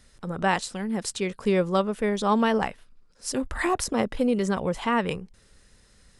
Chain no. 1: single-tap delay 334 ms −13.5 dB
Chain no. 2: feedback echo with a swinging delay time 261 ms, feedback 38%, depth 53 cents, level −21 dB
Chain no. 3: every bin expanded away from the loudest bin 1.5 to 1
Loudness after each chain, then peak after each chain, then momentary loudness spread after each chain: −26.0, −26.0, −25.0 LKFS; −10.5, −10.0, −10.0 dBFS; 13, 10, 12 LU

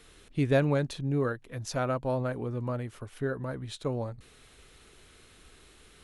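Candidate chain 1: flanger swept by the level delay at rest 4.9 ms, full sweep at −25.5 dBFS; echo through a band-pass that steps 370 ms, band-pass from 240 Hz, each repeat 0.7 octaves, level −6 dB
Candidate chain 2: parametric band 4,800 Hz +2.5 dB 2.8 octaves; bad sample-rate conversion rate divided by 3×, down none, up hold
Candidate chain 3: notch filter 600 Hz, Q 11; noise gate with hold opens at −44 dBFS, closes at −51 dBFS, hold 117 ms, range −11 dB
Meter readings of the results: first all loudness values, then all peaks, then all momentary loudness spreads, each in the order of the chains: −32.5, −31.0, −31.5 LKFS; −15.0, −14.0, −13.0 dBFS; 19, 12, 12 LU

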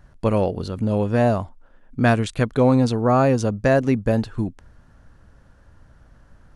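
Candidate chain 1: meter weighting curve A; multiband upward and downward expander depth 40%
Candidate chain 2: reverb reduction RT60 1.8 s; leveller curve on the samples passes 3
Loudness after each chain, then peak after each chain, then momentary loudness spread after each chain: −23.5, −15.5 LKFS; −5.0, −6.0 dBFS; 13, 8 LU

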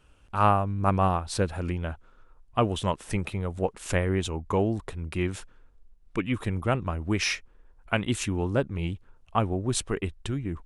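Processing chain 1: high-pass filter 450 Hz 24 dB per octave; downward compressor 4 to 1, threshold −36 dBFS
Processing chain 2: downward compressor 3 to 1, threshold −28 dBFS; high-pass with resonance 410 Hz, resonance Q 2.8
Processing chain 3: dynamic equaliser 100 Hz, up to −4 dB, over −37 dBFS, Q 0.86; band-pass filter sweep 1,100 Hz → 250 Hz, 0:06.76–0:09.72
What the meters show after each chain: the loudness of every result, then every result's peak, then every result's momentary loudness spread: −41.0, −32.0, −35.5 LKFS; −18.0, −10.0, −11.5 dBFS; 7, 8, 18 LU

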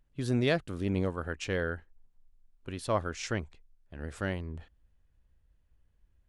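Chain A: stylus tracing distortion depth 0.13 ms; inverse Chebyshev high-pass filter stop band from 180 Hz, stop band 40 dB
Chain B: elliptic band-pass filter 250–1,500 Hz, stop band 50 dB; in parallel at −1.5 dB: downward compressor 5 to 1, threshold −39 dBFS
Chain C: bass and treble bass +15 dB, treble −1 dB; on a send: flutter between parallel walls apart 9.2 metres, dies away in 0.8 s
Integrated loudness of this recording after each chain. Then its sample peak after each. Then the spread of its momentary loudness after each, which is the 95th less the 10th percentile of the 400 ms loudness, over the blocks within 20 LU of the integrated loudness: −35.5, −34.0, −22.5 LKFS; −12.5, −15.0, −5.0 dBFS; 17, 14, 18 LU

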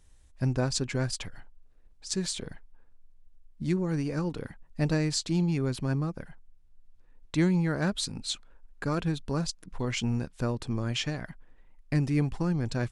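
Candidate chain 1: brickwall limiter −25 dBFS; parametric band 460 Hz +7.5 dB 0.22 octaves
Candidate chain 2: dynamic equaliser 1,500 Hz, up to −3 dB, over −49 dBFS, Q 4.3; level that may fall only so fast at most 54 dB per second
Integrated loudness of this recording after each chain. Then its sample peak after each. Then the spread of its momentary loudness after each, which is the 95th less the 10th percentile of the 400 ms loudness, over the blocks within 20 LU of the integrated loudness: −35.0, −30.0 LKFS; −21.5, −14.0 dBFS; 8, 10 LU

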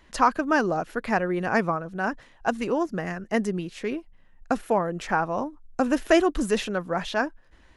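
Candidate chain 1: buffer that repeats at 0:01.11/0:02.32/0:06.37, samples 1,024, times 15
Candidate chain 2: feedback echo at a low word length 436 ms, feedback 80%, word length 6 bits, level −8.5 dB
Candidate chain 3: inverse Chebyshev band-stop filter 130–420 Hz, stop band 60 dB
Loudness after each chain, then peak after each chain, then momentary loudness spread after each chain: −26.0, −25.5, −32.5 LKFS; −5.5, −5.5, −10.5 dBFS; 11, 9, 12 LU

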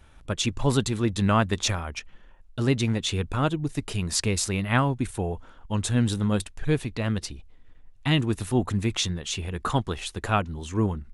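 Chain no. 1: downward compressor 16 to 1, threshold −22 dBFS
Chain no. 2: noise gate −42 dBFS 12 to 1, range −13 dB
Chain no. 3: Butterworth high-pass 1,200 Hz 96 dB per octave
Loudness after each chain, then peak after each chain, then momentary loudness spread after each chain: −29.5, −26.5, −32.0 LKFS; −12.5, −8.5, −11.0 dBFS; 6, 8, 13 LU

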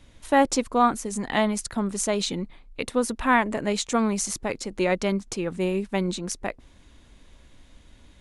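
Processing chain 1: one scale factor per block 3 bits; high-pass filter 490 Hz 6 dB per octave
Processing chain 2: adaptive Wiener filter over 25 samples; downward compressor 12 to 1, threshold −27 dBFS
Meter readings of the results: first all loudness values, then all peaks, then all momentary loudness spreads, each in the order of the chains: −26.5, −33.5 LKFS; −6.5, −11.5 dBFS; 10, 4 LU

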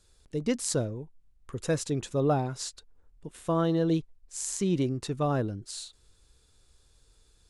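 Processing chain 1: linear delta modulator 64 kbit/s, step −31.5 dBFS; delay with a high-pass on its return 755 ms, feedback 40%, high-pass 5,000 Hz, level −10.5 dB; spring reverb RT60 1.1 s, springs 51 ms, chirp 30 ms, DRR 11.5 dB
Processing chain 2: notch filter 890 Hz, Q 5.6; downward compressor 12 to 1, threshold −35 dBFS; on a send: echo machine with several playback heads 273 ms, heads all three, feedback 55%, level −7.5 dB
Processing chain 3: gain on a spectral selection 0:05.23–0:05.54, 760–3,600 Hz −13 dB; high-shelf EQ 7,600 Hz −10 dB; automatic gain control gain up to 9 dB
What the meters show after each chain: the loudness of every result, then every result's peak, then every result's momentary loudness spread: −30.5, −38.5, −21.5 LKFS; −14.0, −20.0, −7.0 dBFS; 13, 7, 17 LU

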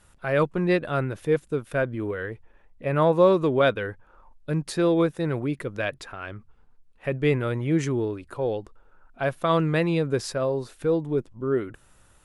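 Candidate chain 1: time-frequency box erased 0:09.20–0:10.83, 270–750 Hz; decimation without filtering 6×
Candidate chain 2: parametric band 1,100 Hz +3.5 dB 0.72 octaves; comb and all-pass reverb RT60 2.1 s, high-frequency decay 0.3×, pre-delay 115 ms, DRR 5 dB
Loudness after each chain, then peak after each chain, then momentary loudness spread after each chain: −25.5, −23.5 LKFS; −8.0, −6.0 dBFS; 13, 13 LU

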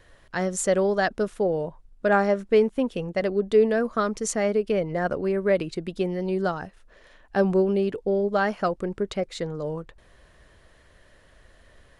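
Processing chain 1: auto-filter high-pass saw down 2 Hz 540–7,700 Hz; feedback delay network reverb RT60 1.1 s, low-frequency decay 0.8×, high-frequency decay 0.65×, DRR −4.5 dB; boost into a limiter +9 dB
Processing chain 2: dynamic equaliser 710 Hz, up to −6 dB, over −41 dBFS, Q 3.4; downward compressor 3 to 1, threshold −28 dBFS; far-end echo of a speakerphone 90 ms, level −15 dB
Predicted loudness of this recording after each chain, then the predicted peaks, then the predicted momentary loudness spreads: −16.5, −31.5 LKFS; −1.0, −17.0 dBFS; 13, 6 LU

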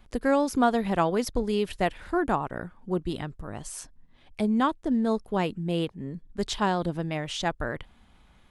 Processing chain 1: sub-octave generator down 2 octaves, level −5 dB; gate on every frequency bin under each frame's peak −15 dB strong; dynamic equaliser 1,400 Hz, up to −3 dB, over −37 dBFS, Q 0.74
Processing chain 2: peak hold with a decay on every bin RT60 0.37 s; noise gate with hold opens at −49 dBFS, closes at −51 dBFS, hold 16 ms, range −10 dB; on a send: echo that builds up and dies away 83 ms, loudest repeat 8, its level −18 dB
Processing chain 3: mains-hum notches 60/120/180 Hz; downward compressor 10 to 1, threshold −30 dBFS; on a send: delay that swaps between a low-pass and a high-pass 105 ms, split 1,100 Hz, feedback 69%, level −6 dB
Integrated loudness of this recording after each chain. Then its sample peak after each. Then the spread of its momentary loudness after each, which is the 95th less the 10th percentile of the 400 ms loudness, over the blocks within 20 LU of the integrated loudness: −29.0, −27.0, −35.0 LKFS; −11.0, −8.5, −19.0 dBFS; 13, 10, 6 LU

